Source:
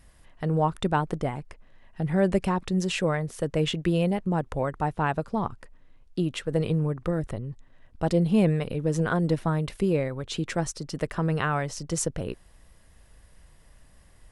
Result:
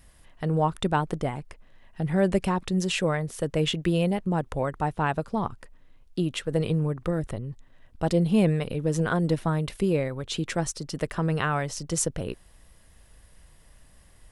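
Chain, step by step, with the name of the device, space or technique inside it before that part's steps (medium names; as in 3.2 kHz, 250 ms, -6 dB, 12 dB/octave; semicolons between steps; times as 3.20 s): presence and air boost (peaking EQ 3.3 kHz +2 dB; treble shelf 9.2 kHz +6.5 dB)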